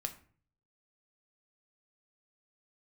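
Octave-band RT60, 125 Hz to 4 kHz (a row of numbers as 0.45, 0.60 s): 0.80, 0.55, 0.50, 0.45, 0.40, 0.30 s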